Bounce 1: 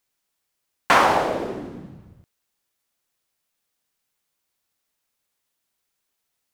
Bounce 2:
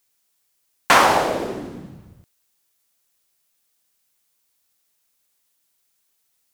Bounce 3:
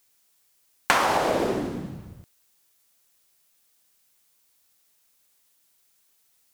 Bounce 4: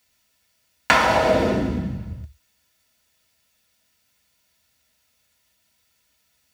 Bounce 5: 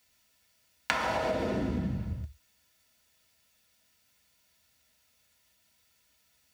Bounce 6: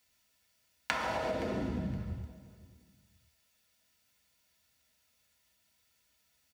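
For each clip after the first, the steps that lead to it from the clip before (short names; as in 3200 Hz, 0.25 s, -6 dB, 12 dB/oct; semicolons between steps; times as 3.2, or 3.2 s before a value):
high shelf 4200 Hz +8.5 dB; gain +1.5 dB
compressor 16:1, threshold -21 dBFS, peak gain reduction 13 dB; gain +3.5 dB
reverb RT60 0.10 s, pre-delay 3 ms, DRR 3 dB; gain -3.5 dB
compressor 16:1, threshold -24 dBFS, peak gain reduction 13.5 dB; gain -2 dB
feedback echo 0.519 s, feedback 25%, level -18.5 dB; gain -4 dB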